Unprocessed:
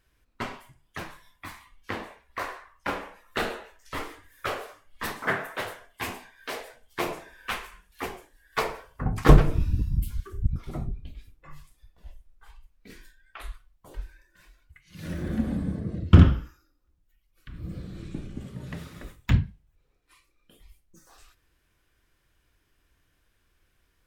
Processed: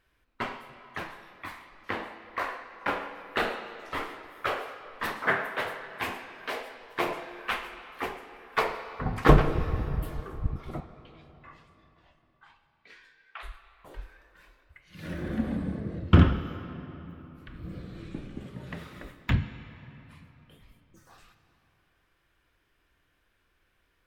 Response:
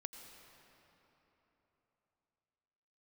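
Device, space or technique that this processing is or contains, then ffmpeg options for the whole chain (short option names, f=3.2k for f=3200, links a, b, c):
filtered reverb send: -filter_complex "[0:a]asettb=1/sr,asplit=3[a][b][c];[a]atrim=end=10.804[d];[b]atrim=start=10.8:end=13.43,asetpts=PTS-STARTPTS,afade=t=in:d=0.004:c=qsin,afade=t=out:st=2.626:d=0.004:c=qsin,acrossover=split=560 6900:gain=0.0794 1 0.0794[e][f][g];[e][f][g]amix=inputs=3:normalize=0[h];[c]atrim=start=13.426[i];[d][h]acrossfade=d=0.004:c1=hsin:c2=qsin[j];[j][i]acrossfade=d=0.004:c1=qsin:c2=hsin,asplit=2[k][l];[l]highpass=f=400:p=1,lowpass=4.1k[m];[1:a]atrim=start_sample=2205[n];[m][n]afir=irnorm=-1:irlink=0,volume=7dB[o];[k][o]amix=inputs=2:normalize=0,volume=-5.5dB"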